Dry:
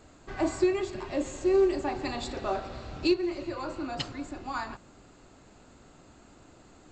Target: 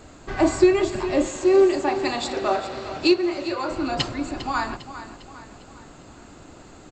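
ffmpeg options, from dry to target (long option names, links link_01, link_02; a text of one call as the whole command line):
ffmpeg -i in.wav -filter_complex "[0:a]asettb=1/sr,asplit=3[link_01][link_02][link_03];[link_01]atrim=end=1.274[link_04];[link_02]atrim=start=1.27:end=3.71,asetpts=PTS-STARTPTS,afade=type=in:duration=0.004:curve=qsin,afade=type=out:start_time=2.436:duration=0.004:curve=qsin,highpass=frequency=290:poles=1[link_05];[link_03]atrim=start=3.706[link_06];[link_04][link_05]acrossfade=duration=0.004:curve1=hsin:curve2=qsin[link_07];[link_07][link_06]acrossfade=duration=0.004:curve1=qsin:curve2=hsin,aecho=1:1:402|804|1206|1608|2010:0.224|0.107|0.0516|0.0248|0.0119,volume=9dB" out.wav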